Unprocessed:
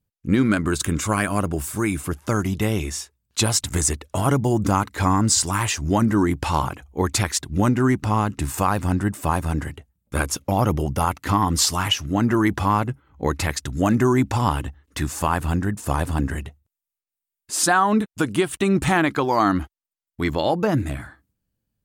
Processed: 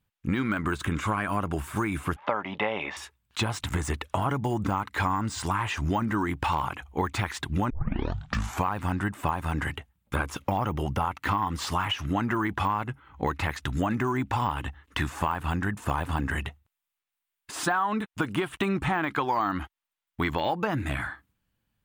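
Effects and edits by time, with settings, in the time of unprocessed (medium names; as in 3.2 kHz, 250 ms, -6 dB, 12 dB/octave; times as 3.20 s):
2.16–2.97 s: cabinet simulation 300–3100 Hz, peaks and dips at 340 Hz -7 dB, 570 Hz +10 dB, 860 Hz +7 dB, 1.5 kHz -5 dB, 2.8 kHz -3 dB
7.70 s: tape start 0.97 s
whole clip: de-esser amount 85%; high-order bell 1.7 kHz +9 dB 2.5 oct; compression, threshold -24 dBFS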